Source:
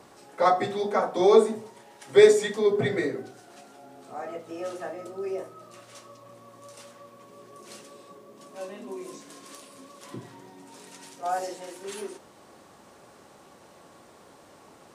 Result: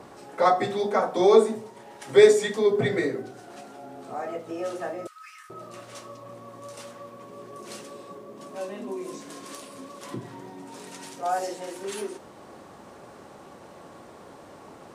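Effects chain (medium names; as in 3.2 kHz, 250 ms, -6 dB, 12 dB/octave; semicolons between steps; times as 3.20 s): 5.07–5.50 s: steep high-pass 1.2 kHz 72 dB/octave; in parallel at +2 dB: compression, threshold -41 dBFS, peak gain reduction 28 dB; on the sum: tape noise reduction on one side only decoder only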